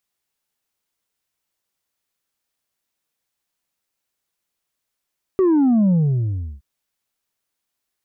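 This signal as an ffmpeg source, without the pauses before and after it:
ffmpeg -f lavfi -i "aevalsrc='0.224*clip((1.22-t)/0.71,0,1)*tanh(1.41*sin(2*PI*390*1.22/log(65/390)*(exp(log(65/390)*t/1.22)-1)))/tanh(1.41)':duration=1.22:sample_rate=44100" out.wav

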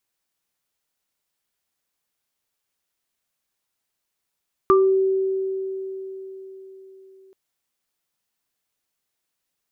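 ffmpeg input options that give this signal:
ffmpeg -f lavfi -i "aevalsrc='0.251*pow(10,-3*t/4.32)*sin(2*PI*383*t)+0.266*pow(10,-3*t/0.28)*sin(2*PI*1180*t)':duration=2.63:sample_rate=44100" out.wav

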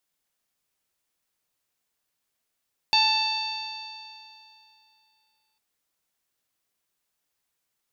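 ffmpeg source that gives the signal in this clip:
ffmpeg -f lavfi -i "aevalsrc='0.0794*pow(10,-3*t/2.69)*sin(2*PI*872.57*t)+0.0141*pow(10,-3*t/2.69)*sin(2*PI*1754.5*t)+0.0668*pow(10,-3*t/2.69)*sin(2*PI*2654.99*t)+0.0562*pow(10,-3*t/2.69)*sin(2*PI*3582.93*t)+0.112*pow(10,-3*t/2.69)*sin(2*PI*4546.75*t)+0.0112*pow(10,-3*t/2.69)*sin(2*PI*5554.33*t)+0.00841*pow(10,-3*t/2.69)*sin(2*PI*6612.93*t)':duration=2.65:sample_rate=44100" out.wav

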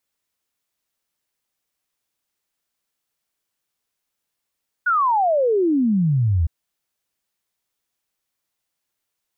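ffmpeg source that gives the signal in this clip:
ffmpeg -f lavfi -i "aevalsrc='0.178*clip(min(t,1.61-t)/0.01,0,1)*sin(2*PI*1500*1.61/log(76/1500)*(exp(log(76/1500)*t/1.61)-1))':duration=1.61:sample_rate=44100" out.wav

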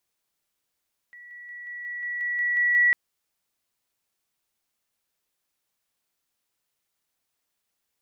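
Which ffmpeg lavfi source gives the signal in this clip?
ffmpeg -f lavfi -i "aevalsrc='pow(10,(-43+3*floor(t/0.18))/20)*sin(2*PI*1940*t)':duration=1.8:sample_rate=44100" out.wav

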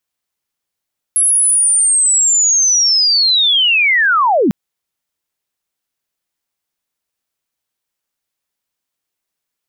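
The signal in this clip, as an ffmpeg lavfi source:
ffmpeg -f lavfi -i "aevalsrc='0.355*sin(2*PI*(11000*t-10830*t*t/(2*3.35)))':duration=3.35:sample_rate=44100" out.wav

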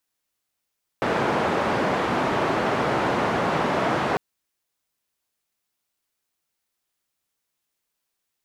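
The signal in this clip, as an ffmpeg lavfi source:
ffmpeg -f lavfi -i "anoisesrc=color=white:duration=3.15:sample_rate=44100:seed=1,highpass=frequency=130,lowpass=frequency=1000,volume=-4.6dB" out.wav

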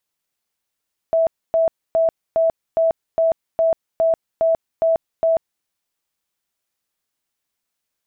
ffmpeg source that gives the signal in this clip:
ffmpeg -f lavfi -i "aevalsrc='0.224*sin(2*PI*655*mod(t,0.41))*lt(mod(t,0.41),91/655)':duration=4.51:sample_rate=44100" out.wav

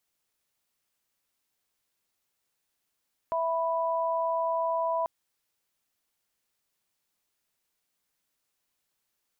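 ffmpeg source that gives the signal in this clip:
ffmpeg -f lavfi -i "aevalsrc='0.0398*(sin(2*PI*659.26*t)+sin(2*PI*987.77*t))':duration=1.74:sample_rate=44100" out.wav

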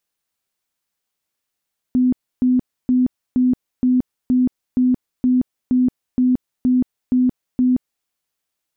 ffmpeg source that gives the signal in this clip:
ffmpeg -f lavfi -i "aevalsrc='0.251*sin(2*PI*252*mod(t,0.47))*lt(mod(t,0.47),44/252)':duration=6.11:sample_rate=44100" out.wav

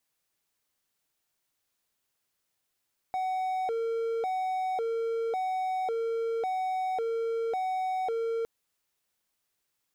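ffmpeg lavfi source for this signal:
ffmpeg -f lavfi -i "aevalsrc='0.0531*(1-4*abs(mod((603*t+146/0.91*(0.5-abs(mod(0.91*t,1)-0.5)))+0.25,1)-0.5))':duration=5.31:sample_rate=44100" out.wav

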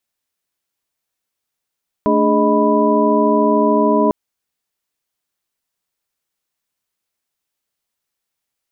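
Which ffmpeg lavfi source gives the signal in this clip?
ffmpeg -f lavfi -i "aevalsrc='0.133*(sin(2*PI*220*t)+sin(2*PI*293.66*t)+sin(2*PI*415.3*t)+sin(2*PI*622.25*t)+sin(2*PI*987.77*t))':duration=2.05:sample_rate=44100" out.wav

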